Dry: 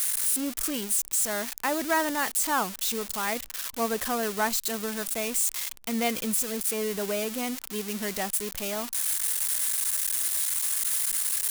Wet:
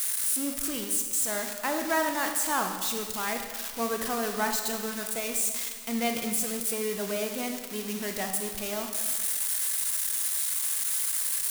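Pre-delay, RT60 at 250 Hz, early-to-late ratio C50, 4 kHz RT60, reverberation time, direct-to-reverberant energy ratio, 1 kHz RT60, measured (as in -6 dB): 23 ms, 1.5 s, 5.5 dB, 1.3 s, 1.5 s, 4.0 dB, 1.5 s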